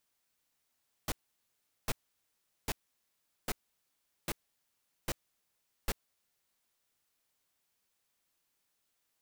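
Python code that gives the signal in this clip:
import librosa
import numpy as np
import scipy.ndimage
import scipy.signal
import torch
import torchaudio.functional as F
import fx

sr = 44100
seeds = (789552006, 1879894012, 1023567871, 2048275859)

y = fx.noise_burst(sr, seeds[0], colour='pink', on_s=0.04, off_s=0.76, bursts=7, level_db=-32.5)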